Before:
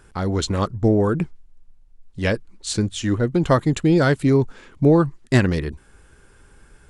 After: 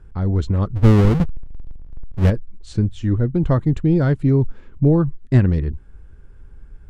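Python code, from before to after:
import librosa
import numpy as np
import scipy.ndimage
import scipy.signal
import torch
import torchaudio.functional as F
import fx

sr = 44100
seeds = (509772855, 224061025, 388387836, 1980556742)

y = fx.halfwave_hold(x, sr, at=(0.75, 2.29), fade=0.02)
y = fx.riaa(y, sr, side='playback')
y = y * 10.0 ** (-7.0 / 20.0)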